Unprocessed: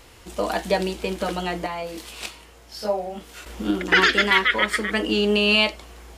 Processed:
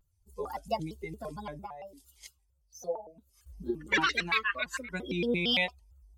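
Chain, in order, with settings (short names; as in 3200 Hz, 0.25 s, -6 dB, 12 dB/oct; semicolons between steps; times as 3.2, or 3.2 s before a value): per-bin expansion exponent 2; shaped vibrato square 4.4 Hz, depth 250 cents; gain -7 dB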